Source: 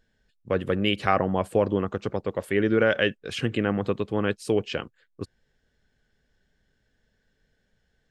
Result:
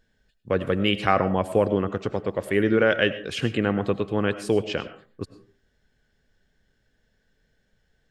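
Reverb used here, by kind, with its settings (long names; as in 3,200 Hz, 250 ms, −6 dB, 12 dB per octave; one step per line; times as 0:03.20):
comb and all-pass reverb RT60 0.42 s, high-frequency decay 0.5×, pre-delay 60 ms, DRR 12 dB
level +1.5 dB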